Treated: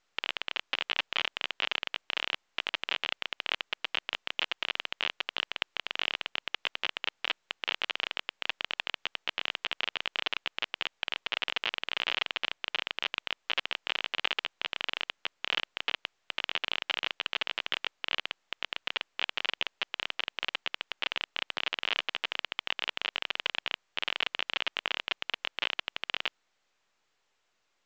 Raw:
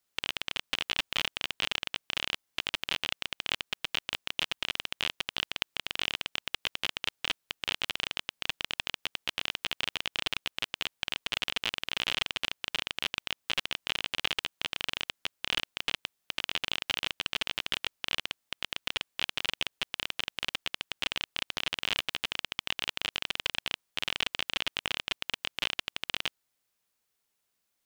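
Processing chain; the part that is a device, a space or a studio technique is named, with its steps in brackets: telephone (band-pass 400–3100 Hz; trim +2.5 dB; µ-law 128 kbps 16 kHz)

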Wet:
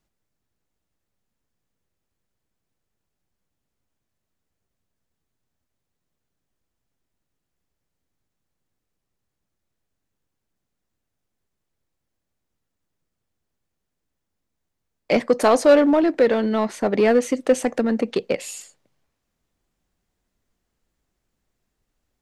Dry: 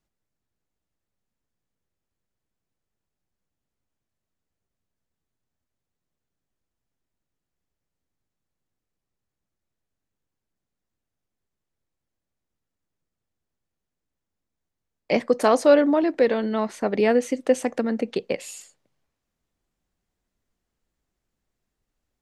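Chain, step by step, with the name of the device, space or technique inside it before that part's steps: parallel distortion (in parallel at -4 dB: hard clipper -20.5 dBFS, distortion -6 dB)

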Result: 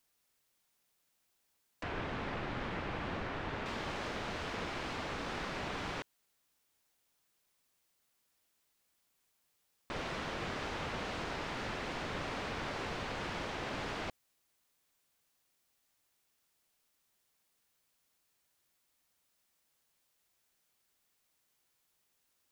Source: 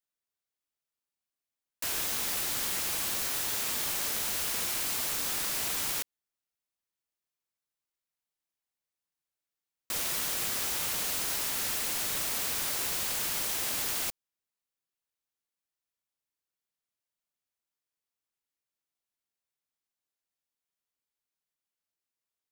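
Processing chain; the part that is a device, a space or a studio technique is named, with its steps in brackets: cassette deck with a dirty head (tape spacing loss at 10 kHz 40 dB; wow and flutter; white noise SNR 34 dB); 1.83–3.66 s: tone controls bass +3 dB, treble -12 dB; trim +5.5 dB

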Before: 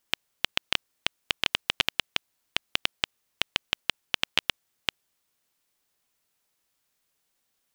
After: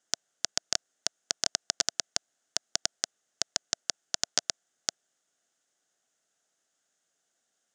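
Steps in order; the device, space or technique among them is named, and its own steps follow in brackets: full-range speaker at full volume (loudspeaker Doppler distortion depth 0.74 ms; cabinet simulation 190–8500 Hz, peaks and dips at 680 Hz +7 dB, 1 kHz -9 dB, 1.5 kHz +5 dB, 2.4 kHz -8 dB, 4.3 kHz -5 dB, 6.7 kHz +8 dB)

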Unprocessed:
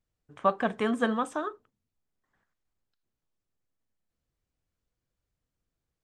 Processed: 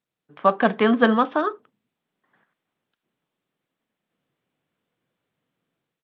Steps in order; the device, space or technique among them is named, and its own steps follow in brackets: Bluetooth headset (high-pass 150 Hz 24 dB/octave; level rider gain up to 10 dB; resampled via 8 kHz; trim +1.5 dB; SBC 64 kbps 32 kHz)

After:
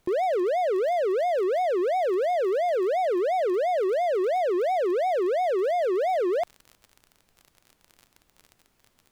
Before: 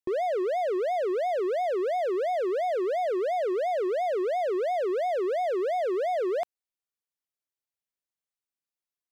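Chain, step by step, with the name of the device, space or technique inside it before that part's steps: vinyl LP (wow and flutter; crackle 40 per s -39 dBFS; pink noise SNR 43 dB); trim +3 dB

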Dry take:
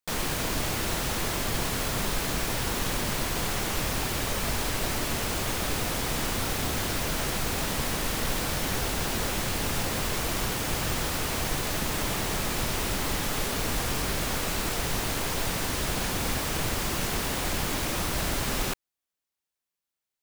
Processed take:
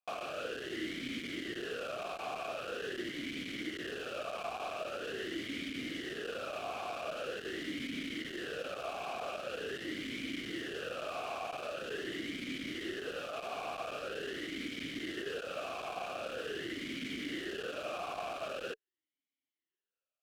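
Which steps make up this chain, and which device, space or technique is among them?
talk box (valve stage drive 36 dB, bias 0.75; talking filter a-i 0.44 Hz); trim +13 dB

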